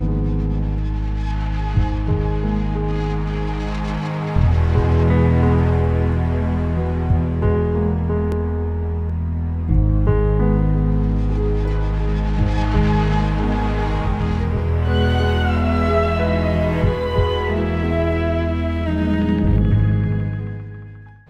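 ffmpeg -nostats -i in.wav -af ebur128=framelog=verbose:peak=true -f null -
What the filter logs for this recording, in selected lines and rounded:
Integrated loudness:
  I:         -19.5 LUFS
  Threshold: -29.6 LUFS
Loudness range:
  LRA:         3.0 LU
  Threshold: -39.4 LUFS
  LRA low:   -21.0 LUFS
  LRA high:  -18.0 LUFS
True peak:
  Peak:       -4.1 dBFS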